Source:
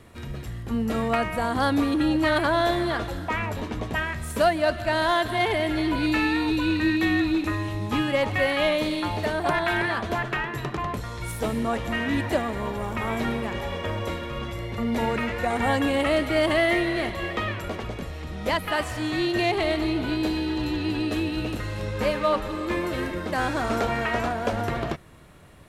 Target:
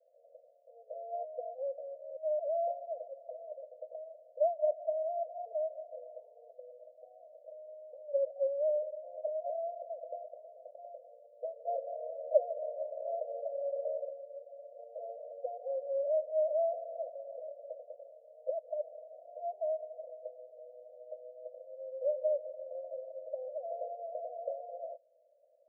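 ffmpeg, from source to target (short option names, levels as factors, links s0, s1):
-filter_complex "[0:a]asettb=1/sr,asplit=3[s0][s1][s2];[s0]atrim=end=11.664[s3];[s1]atrim=start=11.66:end=14.05,asetpts=PTS-STARTPTS,afade=t=in:d=0.004:c=qsin,afade=t=out:st=2.386:d=0.004:c=qsin,acontrast=74[s4];[s2]atrim=start=14.046[s5];[s3][s4]acrossfade=d=0.004:c1=hsin:c2=qsin[s6];[s6][s5]acrossfade=d=0.004:c1=qsin:c2=hsin,asuperpass=centerf=580:order=12:qfactor=3,volume=0.501"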